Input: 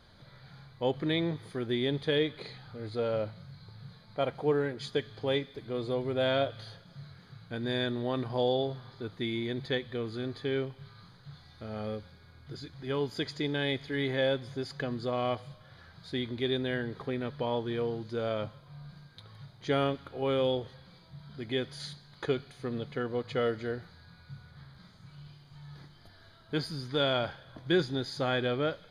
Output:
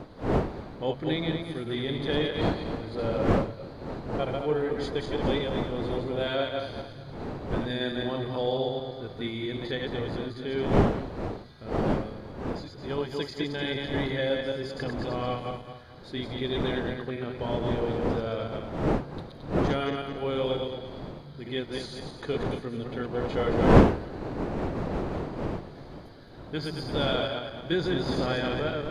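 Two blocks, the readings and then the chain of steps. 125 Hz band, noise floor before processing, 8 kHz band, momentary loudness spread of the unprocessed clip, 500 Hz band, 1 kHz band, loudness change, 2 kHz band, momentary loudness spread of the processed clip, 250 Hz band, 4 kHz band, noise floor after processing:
+6.0 dB, −57 dBFS, can't be measured, 21 LU, +3.0 dB, +5.5 dB, +3.0 dB, +2.0 dB, 11 LU, +5.5 dB, +1.5 dB, −45 dBFS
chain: feedback delay that plays each chunk backwards 110 ms, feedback 59%, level −2.5 dB
wind on the microphone 470 Hz −30 dBFS
level −1.5 dB

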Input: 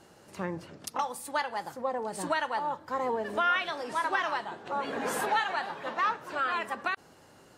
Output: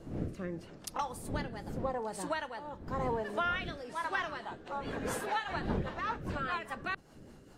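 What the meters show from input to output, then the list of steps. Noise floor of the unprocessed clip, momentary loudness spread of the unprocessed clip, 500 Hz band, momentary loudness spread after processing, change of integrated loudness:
−57 dBFS, 9 LU, −4.0 dB, 8 LU, −5.5 dB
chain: wind on the microphone 290 Hz −38 dBFS
rotating-speaker cabinet horn 0.85 Hz, later 5 Hz, at 0:03.81
level −3 dB

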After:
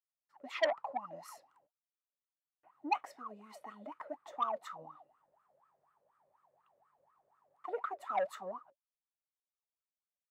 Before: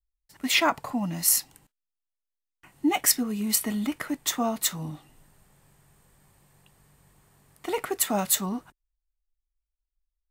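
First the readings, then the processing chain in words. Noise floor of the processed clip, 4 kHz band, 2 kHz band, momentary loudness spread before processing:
below −85 dBFS, −20.0 dB, −12.5 dB, 12 LU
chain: LFO wah 4.1 Hz 540–1,300 Hz, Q 19
saturating transformer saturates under 1,900 Hz
level +8.5 dB

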